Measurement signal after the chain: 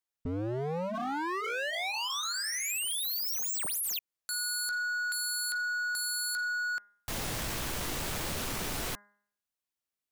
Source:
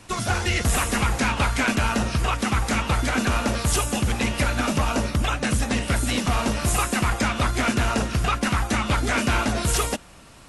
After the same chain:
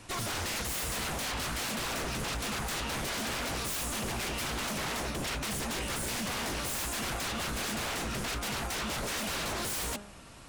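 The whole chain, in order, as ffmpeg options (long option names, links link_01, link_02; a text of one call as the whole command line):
ffmpeg -i in.wav -af "bandreject=frequency=204.8:width_type=h:width=4,bandreject=frequency=409.6:width_type=h:width=4,bandreject=frequency=614.4:width_type=h:width=4,bandreject=frequency=819.2:width_type=h:width=4,bandreject=frequency=1024:width_type=h:width=4,bandreject=frequency=1228.8:width_type=h:width=4,bandreject=frequency=1433.6:width_type=h:width=4,bandreject=frequency=1638.4:width_type=h:width=4,bandreject=frequency=1843.2:width_type=h:width=4,bandreject=frequency=2048:width_type=h:width=4,aeval=exprs='0.0473*(abs(mod(val(0)/0.0473+3,4)-2)-1)':channel_layout=same,volume=-3dB" out.wav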